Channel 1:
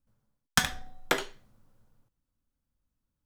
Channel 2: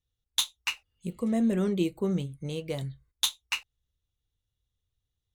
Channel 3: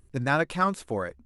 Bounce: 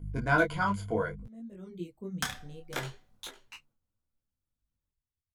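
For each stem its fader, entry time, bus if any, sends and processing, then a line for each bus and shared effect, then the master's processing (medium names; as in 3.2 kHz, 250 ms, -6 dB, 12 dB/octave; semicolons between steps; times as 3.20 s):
-4.5 dB, 1.65 s, no send, echo send -15 dB, none
-14.0 dB, 0.00 s, no send, no echo send, reverb removal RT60 0.89 s; bass shelf 360 Hz +11 dB; auto duck -19 dB, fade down 1.05 s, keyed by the third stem
+0.5 dB, 0.00 s, no send, no echo send, treble shelf 4.1 kHz -8 dB; hum 50 Hz, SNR 13 dB; rippled EQ curve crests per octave 1.8, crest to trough 15 dB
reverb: none
echo: delay 504 ms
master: detune thickener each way 22 cents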